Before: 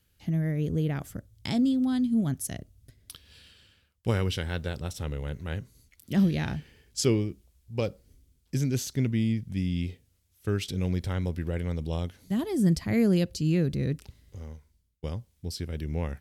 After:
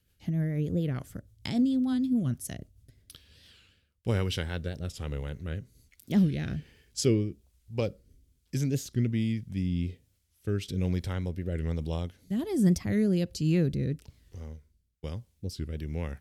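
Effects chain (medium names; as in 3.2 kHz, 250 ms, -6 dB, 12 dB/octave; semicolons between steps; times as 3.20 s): rotary cabinet horn 6.7 Hz, later 1.2 Hz, at 2.69 s; warped record 45 rpm, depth 160 cents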